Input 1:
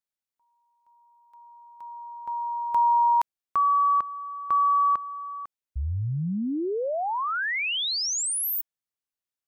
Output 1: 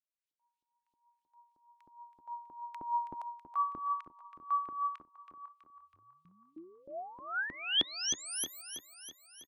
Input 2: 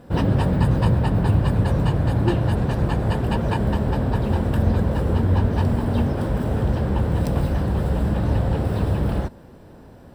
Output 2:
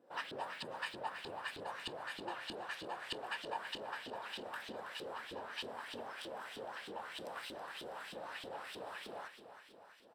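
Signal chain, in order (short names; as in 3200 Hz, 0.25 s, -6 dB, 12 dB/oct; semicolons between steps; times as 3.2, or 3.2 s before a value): differentiator; LFO band-pass saw up 3.2 Hz 300–3700 Hz; on a send: feedback echo 0.325 s, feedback 57%, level -10.5 dB; on the sum: gain +9.5 dB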